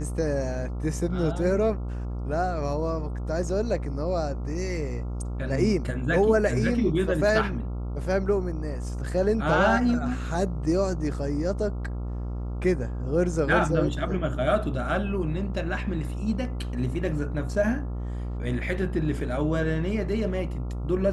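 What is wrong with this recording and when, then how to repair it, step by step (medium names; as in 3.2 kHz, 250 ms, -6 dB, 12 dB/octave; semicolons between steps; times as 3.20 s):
buzz 60 Hz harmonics 23 -31 dBFS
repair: de-hum 60 Hz, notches 23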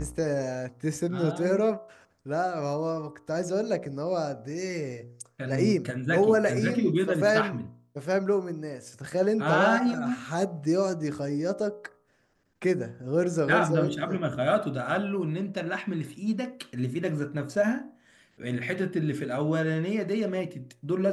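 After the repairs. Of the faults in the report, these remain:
nothing left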